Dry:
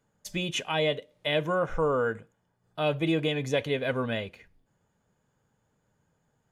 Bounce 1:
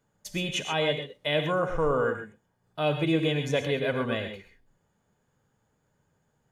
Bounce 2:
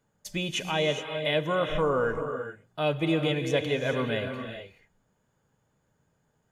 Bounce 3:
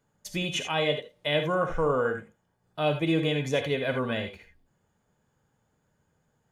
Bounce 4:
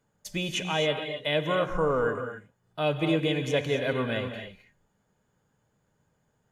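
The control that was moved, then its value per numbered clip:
reverb whose tail is shaped and stops, gate: 150, 450, 100, 290 milliseconds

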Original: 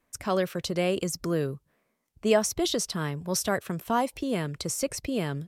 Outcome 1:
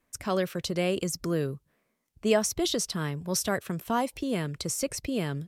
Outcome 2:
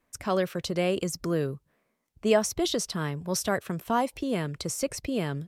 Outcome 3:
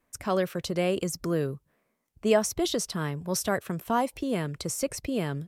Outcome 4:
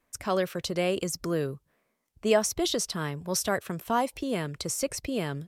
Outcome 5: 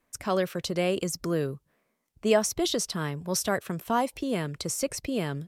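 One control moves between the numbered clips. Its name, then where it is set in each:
parametric band, centre frequency: 810, 15,000, 4,500, 170, 68 Hertz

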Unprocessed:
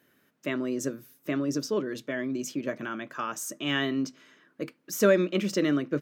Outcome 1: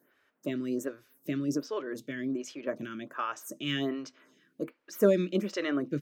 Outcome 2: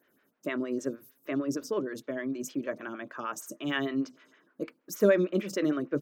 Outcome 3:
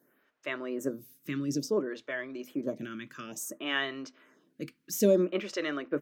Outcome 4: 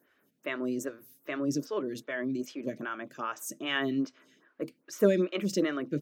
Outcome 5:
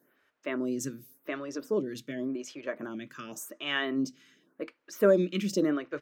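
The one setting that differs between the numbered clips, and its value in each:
phaser with staggered stages, speed: 1.3, 6.5, 0.58, 2.5, 0.89 Hertz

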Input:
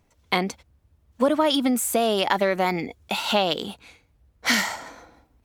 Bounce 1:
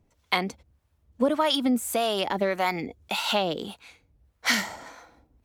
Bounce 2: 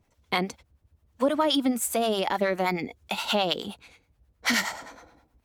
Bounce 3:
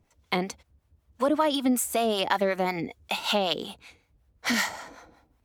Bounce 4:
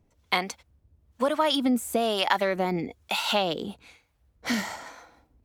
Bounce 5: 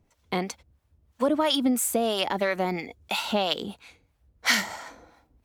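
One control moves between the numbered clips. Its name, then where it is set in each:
two-band tremolo in antiphase, speed: 1.7, 9.5, 5.3, 1.1, 3 Hertz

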